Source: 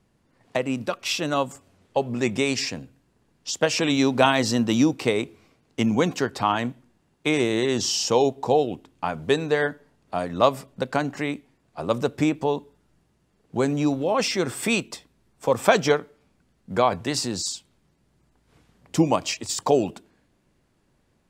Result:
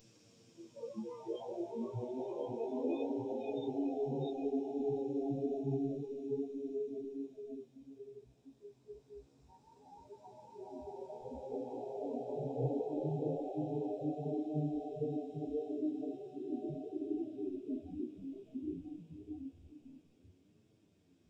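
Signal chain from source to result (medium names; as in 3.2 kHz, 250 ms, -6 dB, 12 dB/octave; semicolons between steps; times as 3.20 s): spectral levelling over time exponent 0.4; amplifier tone stack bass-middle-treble 10-0-1; Paulstretch 28×, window 0.25 s, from 8.07 s; spectral noise reduction 27 dB; flange 0.29 Hz, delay 9 ms, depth 8.9 ms, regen +33%; trim +5.5 dB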